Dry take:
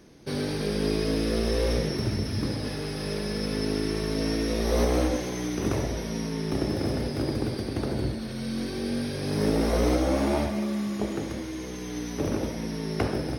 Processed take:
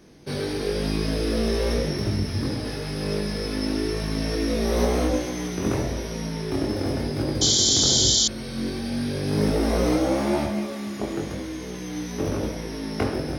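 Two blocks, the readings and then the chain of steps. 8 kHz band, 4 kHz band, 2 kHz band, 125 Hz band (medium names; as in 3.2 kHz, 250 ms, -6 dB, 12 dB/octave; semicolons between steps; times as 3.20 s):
+14.5 dB, +10.5 dB, +2.0 dB, +2.0 dB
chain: chorus 0.96 Hz, delay 19.5 ms, depth 3.1 ms; painted sound noise, 7.41–8.28 s, 3–7.4 kHz -25 dBFS; trim +5 dB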